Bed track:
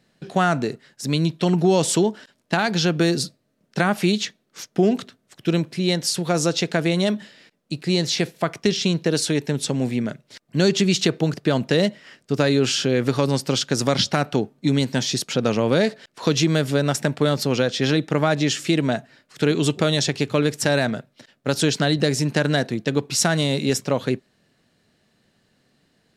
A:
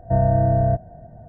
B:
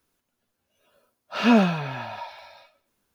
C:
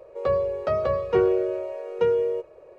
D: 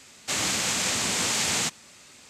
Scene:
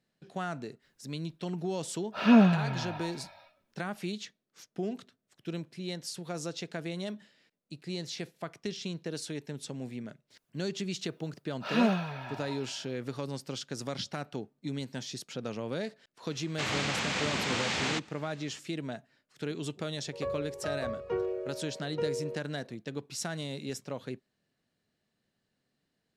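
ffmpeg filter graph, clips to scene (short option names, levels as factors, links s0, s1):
-filter_complex "[2:a]asplit=2[s0][s1];[0:a]volume=0.15[s2];[s0]bass=f=250:g=7,treble=f=4000:g=-5[s3];[4:a]lowpass=3400[s4];[s3]atrim=end=3.14,asetpts=PTS-STARTPTS,volume=0.531,afade=t=in:d=0.004:c=hsin,afade=t=out:st=3.136:d=0.004:c=hsin,adelay=820[s5];[s1]atrim=end=3.14,asetpts=PTS-STARTPTS,volume=0.376,afade=t=in:d=0.004:c=hsin,afade=t=out:st=3.136:d=0.004:c=hsin,adelay=10300[s6];[s4]atrim=end=2.29,asetpts=PTS-STARTPTS,volume=0.794,afade=t=in:d=0.004:c=hsin,afade=t=out:st=2.286:d=0.004:c=hsin,adelay=16300[s7];[3:a]atrim=end=2.78,asetpts=PTS-STARTPTS,volume=0.251,afade=t=in:d=0.004:c=hsin,afade=t=out:st=2.776:d=0.004:c=hsin,adelay=19970[s8];[s2][s5][s6][s7][s8]amix=inputs=5:normalize=0"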